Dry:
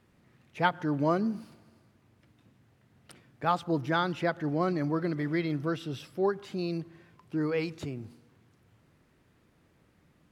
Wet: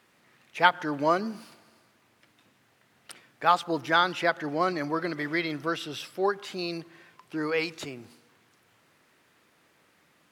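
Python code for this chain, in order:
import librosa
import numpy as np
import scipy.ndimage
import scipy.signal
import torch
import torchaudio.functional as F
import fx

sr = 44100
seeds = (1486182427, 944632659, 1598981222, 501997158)

y = fx.highpass(x, sr, hz=1000.0, slope=6)
y = y * librosa.db_to_amplitude(9.0)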